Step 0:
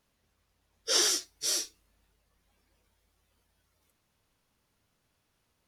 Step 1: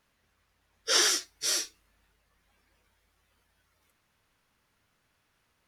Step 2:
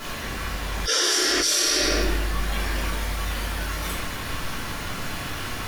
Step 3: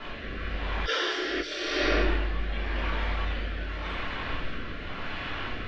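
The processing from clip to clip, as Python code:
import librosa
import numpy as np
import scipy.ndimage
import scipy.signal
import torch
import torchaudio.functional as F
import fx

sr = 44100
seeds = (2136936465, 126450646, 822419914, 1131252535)

y1 = fx.peak_eq(x, sr, hz=1700.0, db=7.0, octaves=1.7)
y2 = fx.room_shoebox(y1, sr, seeds[0], volume_m3=240.0, walls='mixed', distance_m=3.1)
y2 = fx.env_flatten(y2, sr, amount_pct=100)
y2 = F.gain(torch.from_numpy(y2), -8.0).numpy()
y3 = scipy.signal.sosfilt(scipy.signal.butter(4, 3400.0, 'lowpass', fs=sr, output='sos'), y2)
y3 = fx.rotary(y3, sr, hz=0.9)
y3 = fx.peak_eq(y3, sr, hz=130.0, db=-6.5, octaves=1.4)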